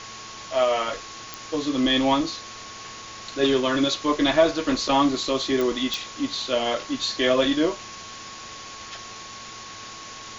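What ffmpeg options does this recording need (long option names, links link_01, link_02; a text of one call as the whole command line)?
ffmpeg -i in.wav -af "adeclick=threshold=4,bandreject=frequency=110.8:width_type=h:width=4,bandreject=frequency=221.6:width_type=h:width=4,bandreject=frequency=332.4:width_type=h:width=4,bandreject=frequency=443.2:width_type=h:width=4,bandreject=frequency=1100:width=30,afwtdn=0.016" out.wav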